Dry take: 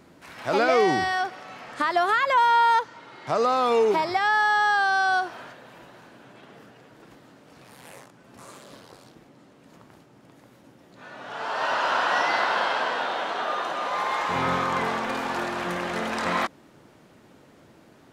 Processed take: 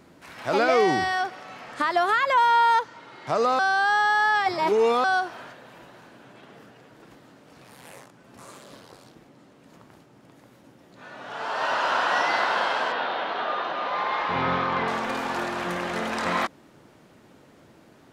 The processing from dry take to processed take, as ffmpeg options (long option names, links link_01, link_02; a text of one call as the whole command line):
ffmpeg -i in.wav -filter_complex "[0:a]asettb=1/sr,asplit=3[link_01][link_02][link_03];[link_01]atrim=end=12.924[link_04];[link_02]atrim=start=12.92:end=14.88,asetpts=PTS-STARTPTS,afade=type=in:duration=0.004:curve=qsin,afade=type=out:start_time=1.956:duration=0.004:curve=qsin,lowpass=frequency=4500:width=0.5412,lowpass=frequency=4500:width=1.3066[link_05];[link_03]atrim=start=14.876[link_06];[link_04][link_05]acrossfade=duration=0.004:curve1=hsin:curve2=qsin[link_07];[link_07][link_06]acrossfade=duration=0.004:curve1=qsin:curve2=hsin,asplit=3[link_08][link_09][link_10];[link_08]atrim=end=3.592[link_11];[link_09]atrim=start=3.588:end=5.042,asetpts=PTS-STARTPTS,areverse[link_12];[link_10]atrim=start=5.038[link_13];[link_11][link_12]acrossfade=duration=0.004:curve1=hsin:curve2=hsin[link_14];[link_14][link_13]acrossfade=duration=0.004:curve1=hsin:curve2=hsin" out.wav